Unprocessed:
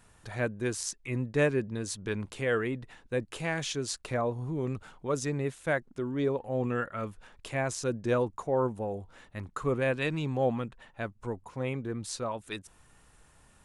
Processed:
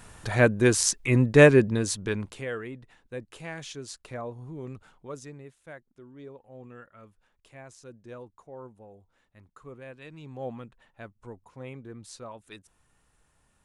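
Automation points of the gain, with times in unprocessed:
1.6 s +11 dB
2.24 s +2 dB
2.55 s -6.5 dB
4.98 s -6.5 dB
5.53 s -16 dB
10.04 s -16 dB
10.47 s -8 dB

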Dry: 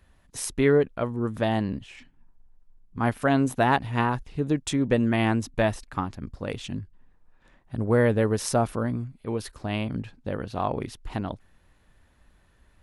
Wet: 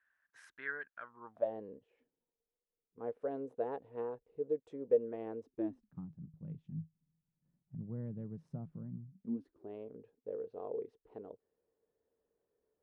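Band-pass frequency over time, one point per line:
band-pass, Q 11
1.01 s 1600 Hz
1.54 s 470 Hz
5.44 s 470 Hz
6 s 160 Hz
9.06 s 160 Hz
9.75 s 450 Hz

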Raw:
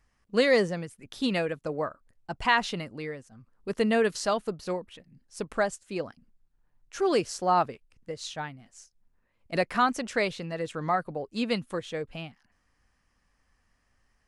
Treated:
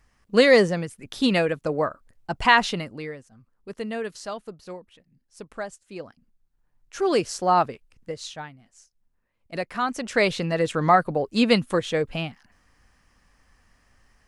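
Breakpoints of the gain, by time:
2.61 s +6.5 dB
3.82 s -6.5 dB
5.64 s -6.5 dB
7.28 s +4 dB
8.1 s +4 dB
8.5 s -3 dB
9.78 s -3 dB
10.36 s +9.5 dB

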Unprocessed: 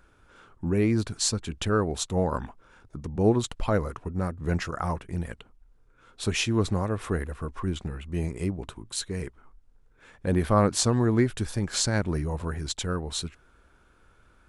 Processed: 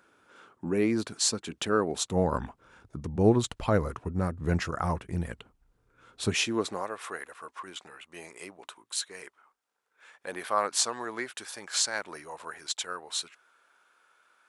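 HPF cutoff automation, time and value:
1.87 s 230 Hz
2.4 s 56 Hz
6.22 s 56 Hz
6.41 s 230 Hz
7.01 s 790 Hz

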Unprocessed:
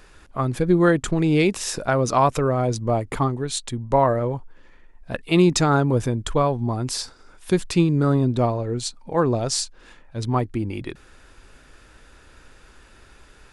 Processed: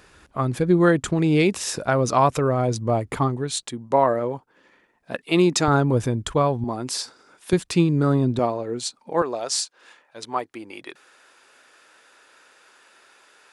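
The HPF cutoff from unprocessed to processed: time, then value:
63 Hz
from 3.63 s 210 Hz
from 5.68 s 58 Hz
from 6.64 s 210 Hz
from 7.53 s 100 Hz
from 8.39 s 230 Hz
from 9.22 s 540 Hz

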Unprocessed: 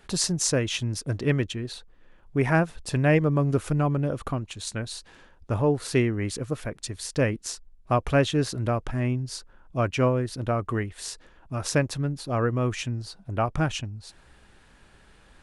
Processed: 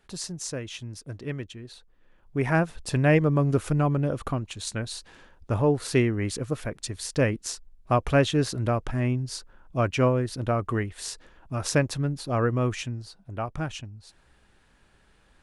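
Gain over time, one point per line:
1.6 s -9.5 dB
2.76 s +0.5 dB
12.63 s +0.5 dB
13.17 s -6 dB

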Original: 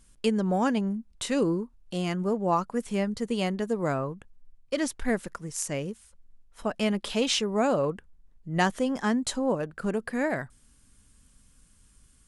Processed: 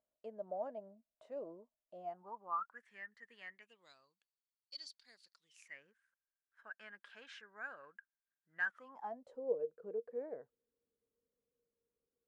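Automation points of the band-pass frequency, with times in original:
band-pass, Q 17
1.99 s 630 Hz
2.86 s 1800 Hz
3.49 s 1800 Hz
3.97 s 4500 Hz
5.34 s 4500 Hz
5.81 s 1600 Hz
8.65 s 1600 Hz
9.35 s 470 Hz

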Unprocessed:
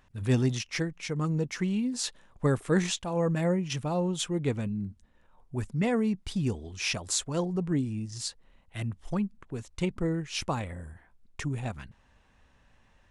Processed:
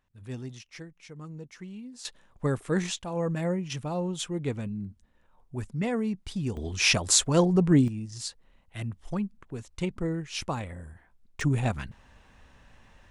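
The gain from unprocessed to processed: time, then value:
-13 dB
from 2.05 s -2 dB
from 6.57 s +8 dB
from 7.88 s -1 dB
from 11.41 s +7 dB

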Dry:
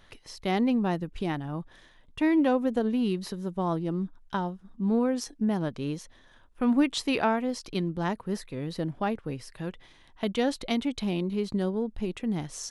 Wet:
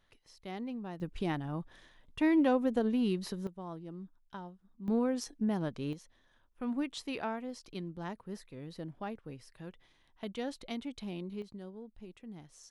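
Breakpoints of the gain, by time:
-15 dB
from 1 s -3.5 dB
from 3.47 s -15 dB
from 4.88 s -5 dB
from 5.93 s -11.5 dB
from 11.42 s -18 dB

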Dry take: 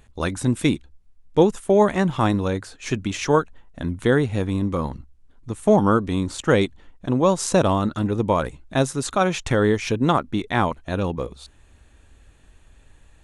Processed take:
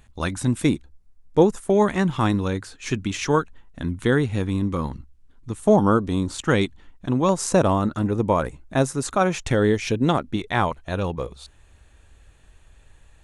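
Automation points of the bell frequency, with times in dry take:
bell -5.5 dB 0.84 oct
440 Hz
from 0.62 s 3000 Hz
from 1.7 s 620 Hz
from 5.59 s 2200 Hz
from 6.32 s 540 Hz
from 7.29 s 3500 Hz
from 9.45 s 1100 Hz
from 10.36 s 260 Hz

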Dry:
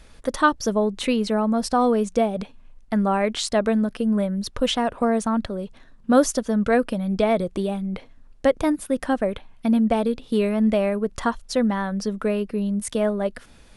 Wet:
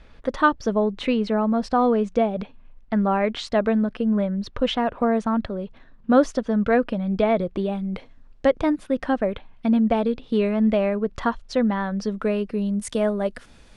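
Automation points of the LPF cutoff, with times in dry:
7.66 s 3300 Hz
7.94 s 7400 Hz
8.67 s 4000 Hz
11.77 s 4000 Hz
12.93 s 9100 Hz

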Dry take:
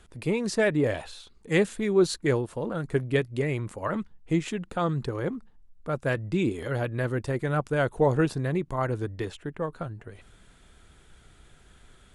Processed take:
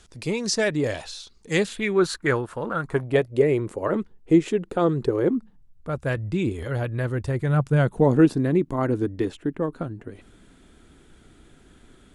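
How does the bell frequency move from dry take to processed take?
bell +12.5 dB 1.1 oct
1.58 s 5600 Hz
2.04 s 1400 Hz
2.73 s 1400 Hz
3.51 s 390 Hz
5.22 s 390 Hz
5.95 s 68 Hz
7.15 s 68 Hz
8.23 s 280 Hz

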